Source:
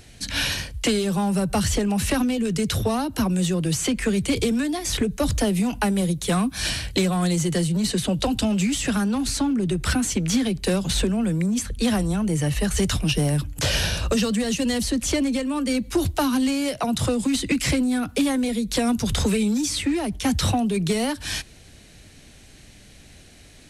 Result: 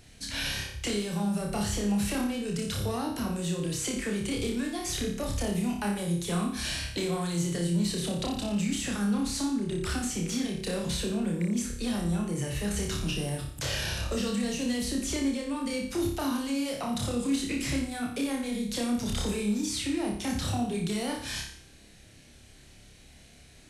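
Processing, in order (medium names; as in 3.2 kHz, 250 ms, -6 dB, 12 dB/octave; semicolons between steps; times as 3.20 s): on a send at -17 dB: reverberation, pre-delay 76 ms; on the sum: peak limiter -16.5 dBFS, peak gain reduction 7 dB; flutter echo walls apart 5 m, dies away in 0.57 s; trim -8.5 dB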